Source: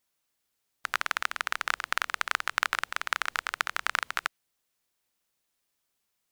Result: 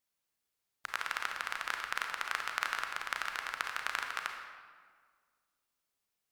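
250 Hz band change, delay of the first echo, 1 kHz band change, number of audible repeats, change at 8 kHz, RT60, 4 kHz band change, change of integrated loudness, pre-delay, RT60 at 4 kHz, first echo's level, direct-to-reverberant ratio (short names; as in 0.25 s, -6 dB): -5.5 dB, none, -5.5 dB, none, -6.5 dB, 1.7 s, -6.0 dB, -6.0 dB, 30 ms, 1.1 s, none, 3.0 dB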